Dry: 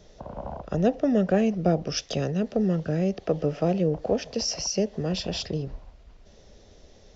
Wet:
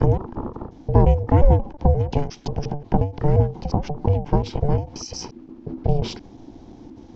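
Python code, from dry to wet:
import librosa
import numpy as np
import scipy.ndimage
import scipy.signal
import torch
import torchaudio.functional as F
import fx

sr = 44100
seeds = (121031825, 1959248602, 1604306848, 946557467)

p1 = fx.block_reorder(x, sr, ms=177.0, group=5)
p2 = fx.rider(p1, sr, range_db=4, speed_s=0.5)
p3 = p1 + (p2 * 10.0 ** (0.0 / 20.0))
p4 = p3 * np.sin(2.0 * np.pi * 290.0 * np.arange(len(p3)) / sr)
p5 = fx.tilt_eq(p4, sr, slope=-3.0)
p6 = fx.end_taper(p5, sr, db_per_s=160.0)
y = p6 * 10.0 ** (-1.5 / 20.0)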